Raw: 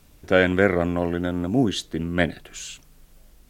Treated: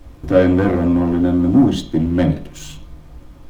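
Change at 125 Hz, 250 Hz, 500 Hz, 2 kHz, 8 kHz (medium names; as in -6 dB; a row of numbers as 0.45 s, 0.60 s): +8.0 dB, +10.0 dB, +4.0 dB, -5.5 dB, no reading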